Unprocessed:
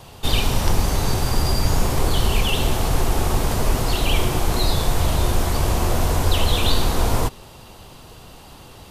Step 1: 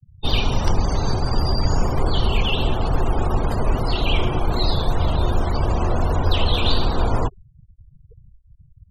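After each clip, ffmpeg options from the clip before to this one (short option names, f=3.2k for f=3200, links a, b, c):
-af "afftfilt=real='re*gte(hypot(re,im),0.0447)':imag='im*gte(hypot(re,im),0.0447)':win_size=1024:overlap=0.75"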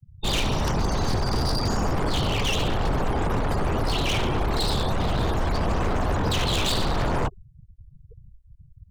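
-af "aeval=exprs='0.126*(abs(mod(val(0)/0.126+3,4)-2)-1)':c=same"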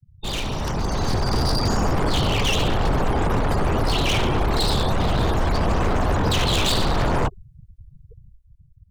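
-af "dynaudnorm=f=270:g=7:m=6.5dB,volume=-3dB"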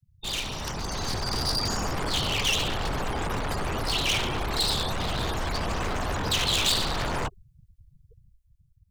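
-af "tiltshelf=f=1.4k:g=-5.5,volume=-4.5dB"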